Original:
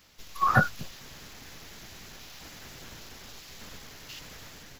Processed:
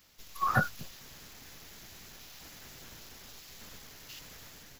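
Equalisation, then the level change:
high-shelf EQ 8,500 Hz +8.5 dB
−5.5 dB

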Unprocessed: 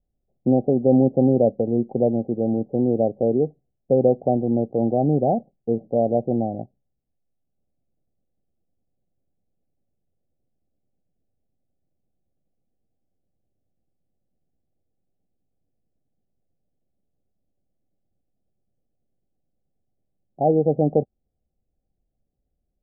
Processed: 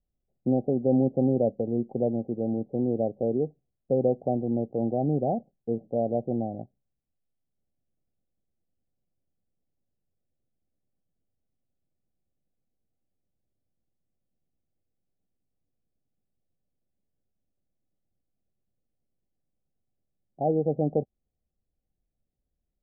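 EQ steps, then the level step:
high-frequency loss of the air 430 metres
−5.5 dB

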